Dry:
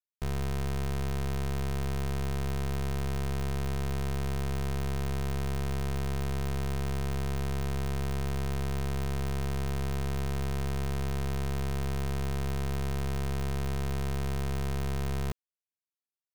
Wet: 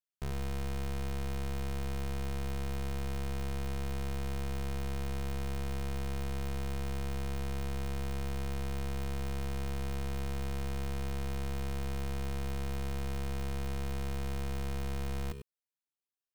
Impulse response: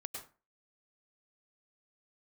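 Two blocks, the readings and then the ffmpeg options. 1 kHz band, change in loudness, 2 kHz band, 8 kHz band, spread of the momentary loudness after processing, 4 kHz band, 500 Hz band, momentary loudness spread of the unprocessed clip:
-4.5 dB, -4.5 dB, -4.0 dB, -4.0 dB, 0 LU, -3.5 dB, -4.5 dB, 0 LU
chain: -filter_complex "[1:a]atrim=start_sample=2205,atrim=end_sample=4410[a];[0:a][a]afir=irnorm=-1:irlink=0"

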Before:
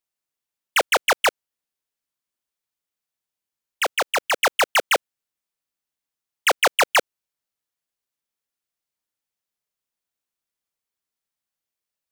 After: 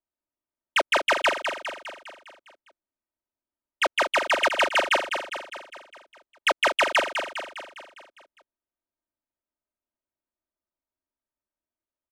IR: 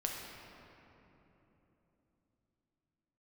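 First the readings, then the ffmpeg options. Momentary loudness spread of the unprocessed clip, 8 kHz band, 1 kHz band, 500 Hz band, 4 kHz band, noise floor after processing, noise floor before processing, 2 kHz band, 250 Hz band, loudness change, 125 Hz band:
5 LU, -9.5 dB, -2.0 dB, -1.5 dB, -2.0 dB, under -85 dBFS, under -85 dBFS, -1.5 dB, +0.5 dB, -3.5 dB, n/a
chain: -filter_complex "[0:a]adynamicsmooth=sensitivity=4:basefreq=1.3k,aecho=1:1:3.2:0.68,acompressor=threshold=-17dB:ratio=6,aemphasis=mode=reproduction:type=50fm,asplit=2[a][b];[b]aecho=0:1:203|406|609|812|1015|1218|1421:0.447|0.25|0.14|0.0784|0.0439|0.0246|0.0138[c];[a][c]amix=inputs=2:normalize=0" -ar 32000 -c:a libmp3lame -b:a 320k

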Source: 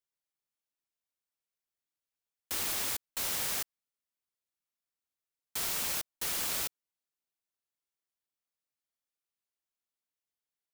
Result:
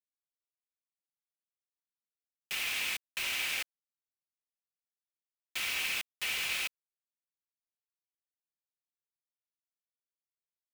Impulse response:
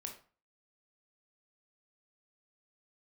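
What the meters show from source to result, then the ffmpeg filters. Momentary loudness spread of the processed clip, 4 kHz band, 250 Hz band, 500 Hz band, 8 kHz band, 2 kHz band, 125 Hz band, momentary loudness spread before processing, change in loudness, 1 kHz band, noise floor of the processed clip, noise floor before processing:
7 LU, +3.5 dB, -7.5 dB, -6.5 dB, -5.5 dB, +8.5 dB, -8.5 dB, 7 LU, -0.5 dB, -3.0 dB, under -85 dBFS, under -85 dBFS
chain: -af "dynaudnorm=f=500:g=7:m=12.5dB,bandpass=f=2.5k:t=q:w=4:csg=0,aecho=1:1:3.9:0.36,acontrast=83,acrusher=bits=4:mix=0:aa=0.000001,volume=-7.5dB"

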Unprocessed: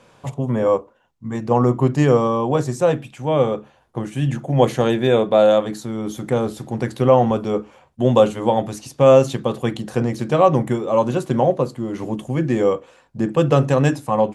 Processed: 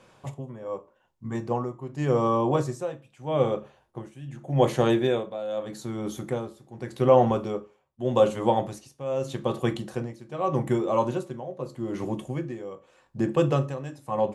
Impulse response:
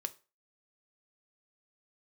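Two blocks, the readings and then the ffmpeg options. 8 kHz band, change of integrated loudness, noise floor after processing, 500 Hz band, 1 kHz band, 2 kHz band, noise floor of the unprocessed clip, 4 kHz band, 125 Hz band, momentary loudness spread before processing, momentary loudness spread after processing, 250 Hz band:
-9.0 dB, -8.0 dB, -65 dBFS, -8.5 dB, -7.0 dB, -9.0 dB, -56 dBFS, -8.0 dB, -9.0 dB, 12 LU, 17 LU, -8.5 dB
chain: -filter_complex "[0:a]tremolo=f=0.83:d=0.86[a];[1:a]atrim=start_sample=2205[b];[a][b]afir=irnorm=-1:irlink=0,volume=-3dB"

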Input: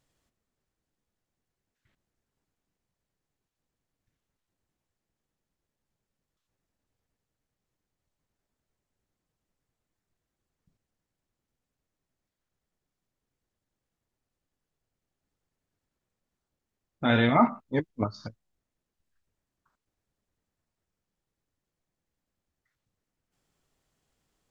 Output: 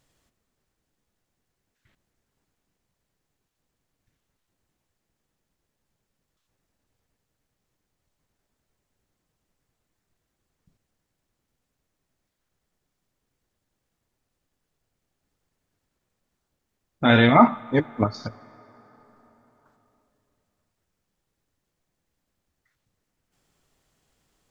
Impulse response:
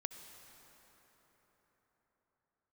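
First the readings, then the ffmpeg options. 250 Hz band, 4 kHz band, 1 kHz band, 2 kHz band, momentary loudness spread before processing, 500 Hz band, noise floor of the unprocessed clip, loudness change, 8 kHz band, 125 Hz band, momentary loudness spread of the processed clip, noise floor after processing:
+6.5 dB, +7.0 dB, +7.0 dB, +7.0 dB, 12 LU, +6.5 dB, under -85 dBFS, +6.5 dB, n/a, +6.0 dB, 17 LU, -80 dBFS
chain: -filter_complex "[0:a]asplit=2[a][b];[1:a]atrim=start_sample=2205,lowshelf=f=450:g=-8.5[c];[b][c]afir=irnorm=-1:irlink=0,volume=-10.5dB[d];[a][d]amix=inputs=2:normalize=0,volume=5.5dB"

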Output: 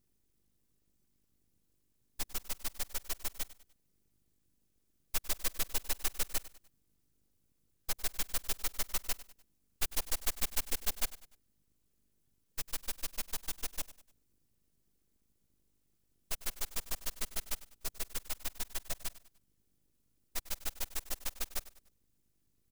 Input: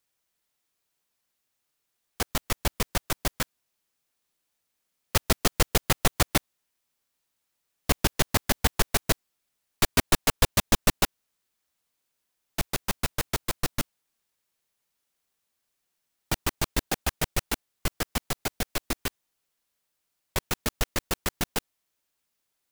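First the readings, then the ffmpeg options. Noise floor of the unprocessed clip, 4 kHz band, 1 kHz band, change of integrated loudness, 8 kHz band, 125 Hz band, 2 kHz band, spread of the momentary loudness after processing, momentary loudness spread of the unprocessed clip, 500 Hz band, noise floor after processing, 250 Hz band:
-80 dBFS, -11.5 dB, -17.0 dB, -10.0 dB, -8.0 dB, -21.5 dB, -14.5 dB, 9 LU, 11 LU, -19.0 dB, -76 dBFS, -22.5 dB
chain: -af "equalizer=f=310:t=o:w=1.4:g=11.5,aeval=exprs='val(0)+0.00126*(sin(2*PI*50*n/s)+sin(2*PI*2*50*n/s)/2+sin(2*PI*3*50*n/s)/3+sin(2*PI*4*50*n/s)/4+sin(2*PI*5*50*n/s)/5)':c=same,afftfilt=real='hypot(re,im)*cos(2*PI*random(0))':imag='hypot(re,im)*sin(2*PI*random(1))':win_size=512:overlap=0.75,asoftclip=type=tanh:threshold=-18.5dB,bass=f=250:g=-4,treble=f=4k:g=13,aeval=exprs='abs(val(0))':c=same,aecho=1:1:99|198|297:0.141|0.0565|0.0226,volume=-7dB"

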